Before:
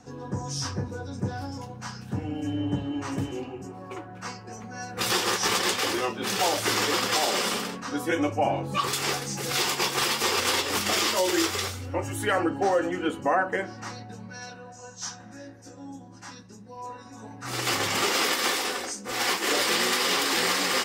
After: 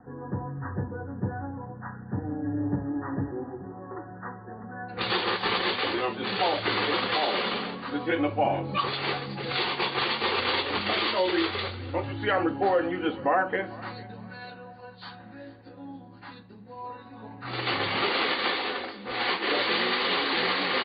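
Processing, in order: Chebyshev low-pass 1900 Hz, order 10, from 4.88 s 4600 Hz; feedback echo 0.449 s, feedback 31%, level -20.5 dB

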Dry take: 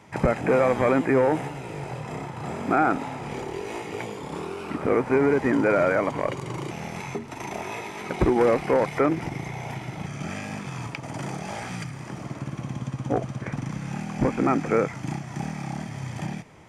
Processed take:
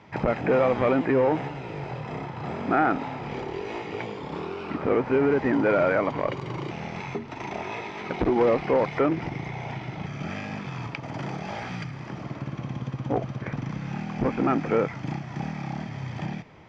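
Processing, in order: LPF 4900 Hz 24 dB/oct; core saturation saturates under 430 Hz

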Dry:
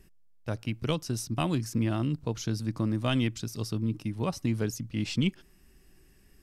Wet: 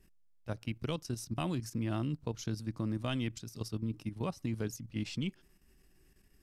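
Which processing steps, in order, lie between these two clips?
level quantiser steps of 10 dB; gain -3.5 dB

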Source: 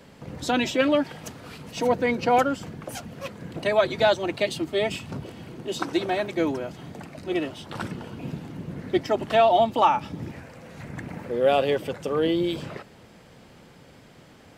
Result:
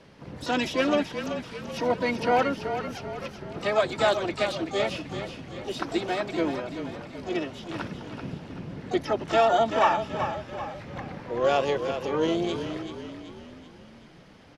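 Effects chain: Chebyshev low-pass 5700 Hz, order 4; harmoniser -7 st -16 dB, +4 st -15 dB, +12 st -12 dB; frequency-shifting echo 0.383 s, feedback 50%, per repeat -30 Hz, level -8.5 dB; gain -2.5 dB

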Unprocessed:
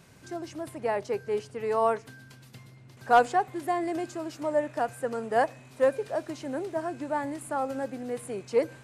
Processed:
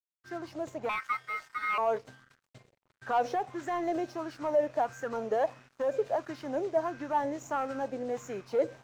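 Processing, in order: nonlinear frequency compression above 3400 Hz 1.5:1; expander -45 dBFS; limiter -20.5 dBFS, peak gain reduction 9.5 dB; soft clip -24 dBFS, distortion -17 dB; 0.89–1.78 ring modulator 1700 Hz; crossover distortion -53.5 dBFS; LFO bell 1.5 Hz 500–1600 Hz +10 dB; gain -2 dB

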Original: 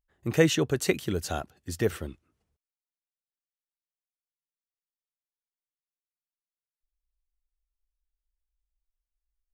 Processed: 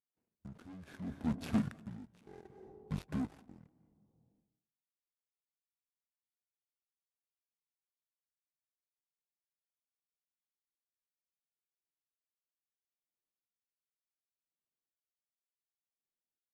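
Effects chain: median filter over 25 samples; HPF 220 Hz 12 dB/oct; sample leveller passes 3; level quantiser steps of 12 dB; limiter -24.5 dBFS, peak gain reduction 10.5 dB; speakerphone echo 0.1 s, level -17 dB; reverb RT60 0.65 s, pre-delay 97 ms, DRR 14.5 dB; speed mistake 78 rpm record played at 45 rpm; dB-linear tremolo 0.68 Hz, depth 23 dB; gain +1 dB

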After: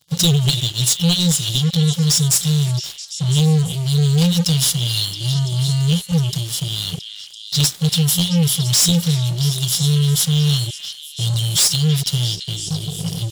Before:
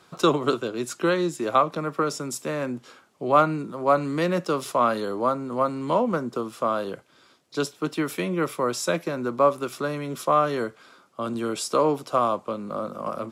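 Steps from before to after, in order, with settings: FFT band-reject 180–2800 Hz; sample leveller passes 5; delay with a stepping band-pass 0.336 s, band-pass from 2500 Hz, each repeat 0.7 oct, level -6.5 dB; gain +5.5 dB

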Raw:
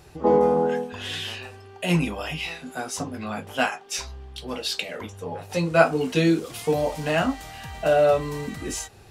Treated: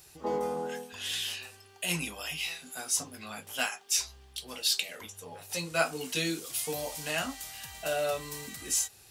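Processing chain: pre-emphasis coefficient 0.9; gain +5 dB

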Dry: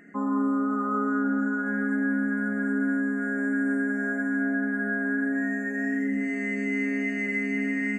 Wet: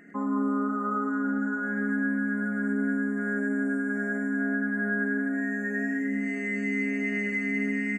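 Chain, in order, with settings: 3.47–3.96 notch 1900 Hz, Q 6.5; in parallel at -2 dB: limiter -23.5 dBFS, peak gain reduction 7 dB; on the sum: feedback echo 0.102 s, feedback 53%, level -8 dB; gain -5.5 dB

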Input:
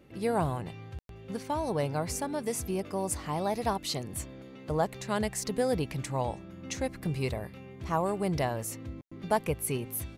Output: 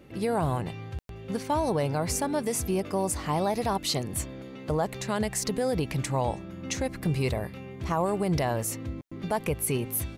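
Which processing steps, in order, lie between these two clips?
limiter -23 dBFS, peak gain reduction 8 dB; gain +5.5 dB

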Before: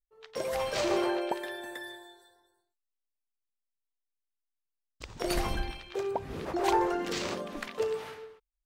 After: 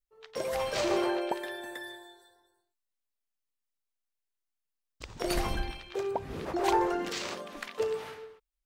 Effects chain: 7.09–7.79 low shelf 480 Hz -9 dB

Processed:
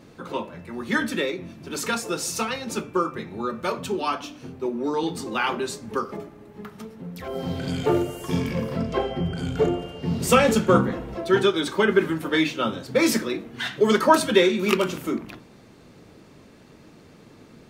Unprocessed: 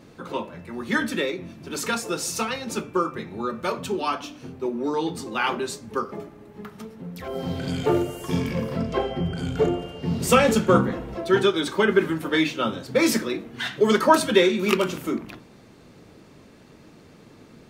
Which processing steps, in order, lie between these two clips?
5.03–6.17 three-band squash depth 40%

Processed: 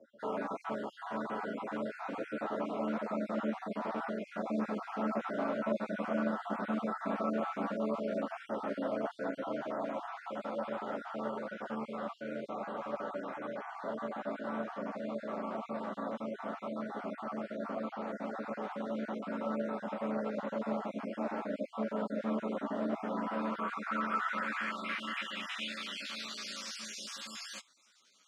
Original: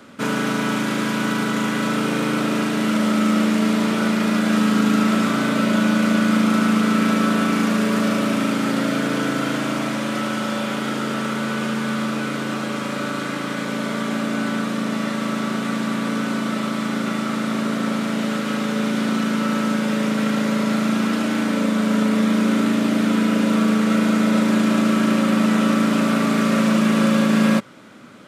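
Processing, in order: random spectral dropouts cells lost 40%; band-pass sweep 690 Hz -> 5600 Hz, 22.93–26.75; ensemble effect

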